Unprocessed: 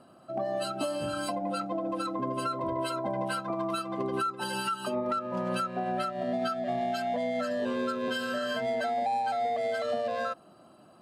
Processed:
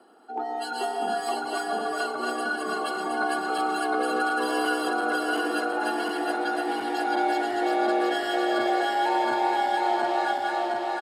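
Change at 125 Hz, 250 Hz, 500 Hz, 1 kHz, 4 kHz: under -15 dB, +4.0 dB, +3.0 dB, +7.5 dB, +5.5 dB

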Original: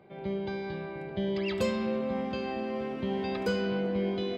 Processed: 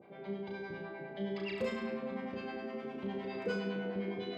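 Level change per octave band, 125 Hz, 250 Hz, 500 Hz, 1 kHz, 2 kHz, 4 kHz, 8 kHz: -8.0 dB, -7.5 dB, -7.5 dB, -8.0 dB, -4.0 dB, -8.0 dB, under -10 dB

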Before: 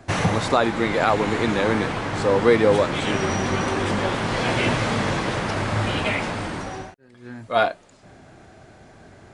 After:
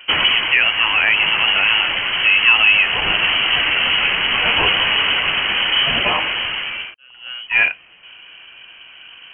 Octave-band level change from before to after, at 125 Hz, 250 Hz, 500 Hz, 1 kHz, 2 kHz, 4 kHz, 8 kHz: -11.5 dB, -11.5 dB, -10.0 dB, 0.0 dB, +12.5 dB, +17.0 dB, under -40 dB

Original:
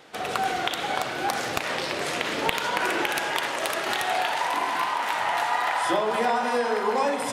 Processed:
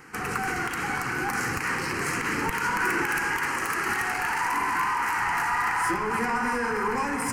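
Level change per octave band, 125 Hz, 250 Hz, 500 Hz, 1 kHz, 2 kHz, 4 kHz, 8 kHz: +6.5 dB, +1.5 dB, -6.5 dB, -1.5 dB, +2.5 dB, -9.0 dB, +1.0 dB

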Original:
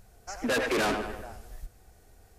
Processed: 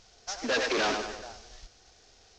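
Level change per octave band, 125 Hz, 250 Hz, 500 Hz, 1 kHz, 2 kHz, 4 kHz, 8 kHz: -8.0 dB, -4.0 dB, -1.0 dB, -0.5 dB, 0.0 dB, +4.0 dB, +2.0 dB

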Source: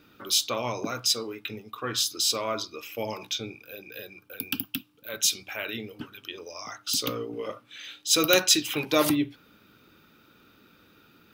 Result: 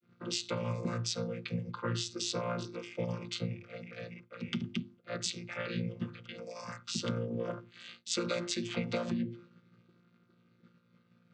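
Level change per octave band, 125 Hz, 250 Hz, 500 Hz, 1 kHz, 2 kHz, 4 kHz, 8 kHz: +4.5 dB, -5.0 dB, -7.5 dB, -9.5 dB, -10.0 dB, -12.5 dB, -14.0 dB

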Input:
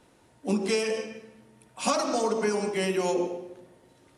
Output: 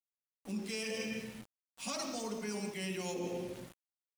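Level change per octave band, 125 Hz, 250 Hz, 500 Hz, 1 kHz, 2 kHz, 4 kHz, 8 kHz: -7.5 dB, -9.5 dB, -14.0 dB, -15.0 dB, -8.0 dB, -7.0 dB, -7.5 dB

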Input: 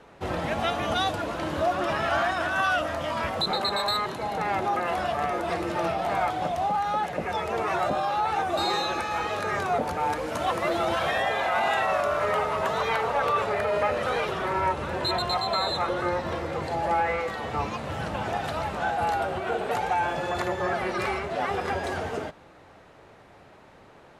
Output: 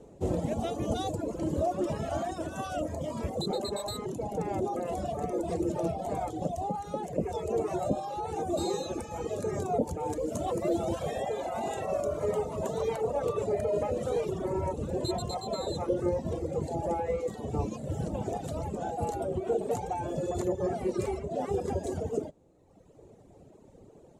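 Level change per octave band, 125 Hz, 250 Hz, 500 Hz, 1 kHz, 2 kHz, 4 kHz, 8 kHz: +1.0 dB, +1.0 dB, -2.0 dB, -10.5 dB, -20.0 dB, -13.0 dB, -0.5 dB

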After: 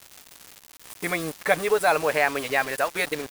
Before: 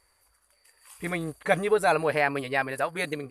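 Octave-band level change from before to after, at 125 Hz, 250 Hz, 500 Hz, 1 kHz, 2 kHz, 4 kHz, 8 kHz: -3.5 dB, -0.5 dB, +1.5 dB, +2.5 dB, +3.5 dB, +5.5 dB, +8.0 dB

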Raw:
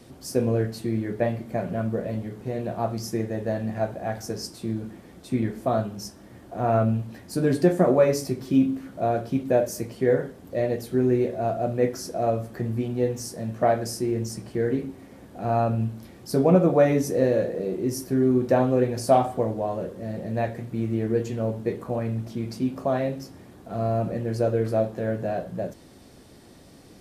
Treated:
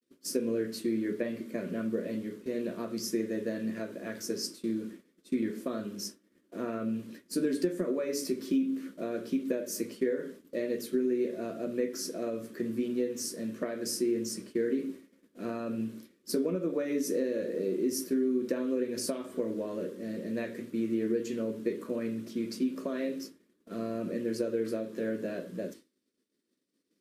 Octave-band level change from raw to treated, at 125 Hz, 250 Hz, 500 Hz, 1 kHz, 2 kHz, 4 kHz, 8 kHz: -19.0 dB, -5.5 dB, -9.0 dB, -19.5 dB, -7.0 dB, -1.5 dB, -1.0 dB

